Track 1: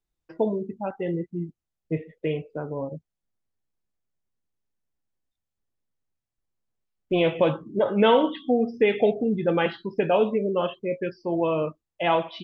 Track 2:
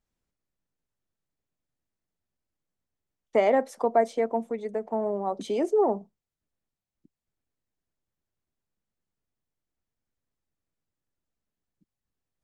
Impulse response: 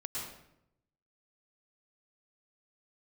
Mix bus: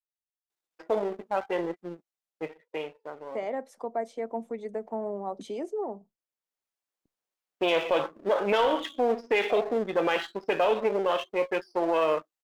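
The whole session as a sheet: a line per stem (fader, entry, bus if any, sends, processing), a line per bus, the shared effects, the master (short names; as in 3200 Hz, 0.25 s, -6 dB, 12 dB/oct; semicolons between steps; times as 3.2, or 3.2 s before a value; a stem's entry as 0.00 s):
+3.0 dB, 0.50 s, no send, half-wave gain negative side -7 dB; HPF 500 Hz 12 dB/oct; sample leveller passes 1; auto duck -11 dB, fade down 1.70 s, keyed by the second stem
-8.0 dB, 0.00 s, no send, gate with hold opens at -47 dBFS; vocal rider 0.5 s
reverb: off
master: limiter -15.5 dBFS, peak gain reduction 8.5 dB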